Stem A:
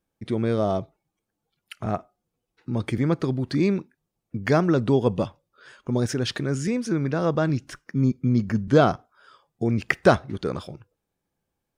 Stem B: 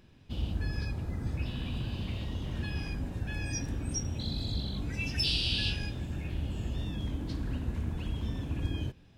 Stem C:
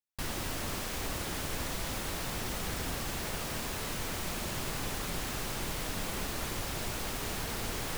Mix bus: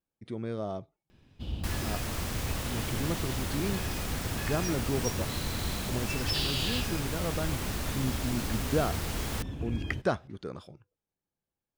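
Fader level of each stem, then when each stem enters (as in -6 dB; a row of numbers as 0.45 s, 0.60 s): -11.5 dB, -2.0 dB, 0.0 dB; 0.00 s, 1.10 s, 1.45 s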